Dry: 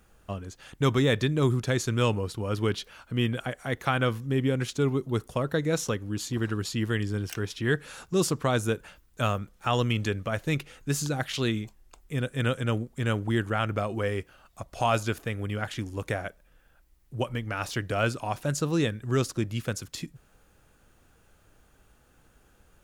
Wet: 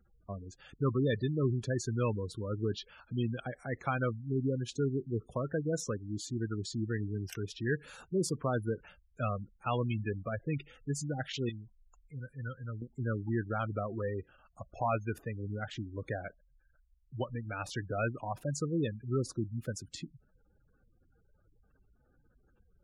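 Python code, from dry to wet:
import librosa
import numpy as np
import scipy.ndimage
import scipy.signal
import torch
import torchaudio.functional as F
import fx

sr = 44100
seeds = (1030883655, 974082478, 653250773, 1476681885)

y = fx.spec_gate(x, sr, threshold_db=-15, keep='strong')
y = fx.peak_eq(y, sr, hz=360.0, db=-15.0, octaves=2.4, at=(11.49, 12.82))
y = F.gain(torch.from_numpy(y), -6.0).numpy()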